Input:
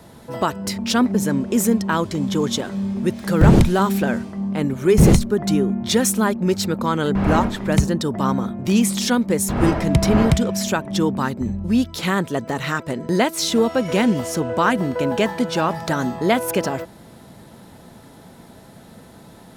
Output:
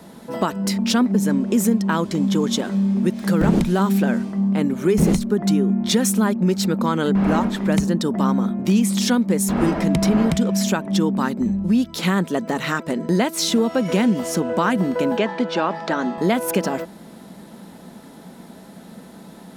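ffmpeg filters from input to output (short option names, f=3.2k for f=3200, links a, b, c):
-filter_complex "[0:a]asettb=1/sr,asplit=3[a][b][c];[a]atrim=end=15.174[d];[b]atrim=start=15.17:end=16.18,asetpts=PTS-STARTPTS,afade=t=in:d=0.004:c=qsin,afade=t=out:st=1.006:d=0.004:c=qsin,highpass=270,lowpass=4.1k[e];[c]atrim=start=16.176[f];[d][e]acrossfade=d=0.004:c1=hsin:c2=qsin[g];[g][f]acrossfade=d=0.004:c1=qsin:c2=hsin,lowshelf=f=150:t=q:w=3:g=-6.5,acompressor=threshold=-17dB:ratio=2.5,volume=1dB"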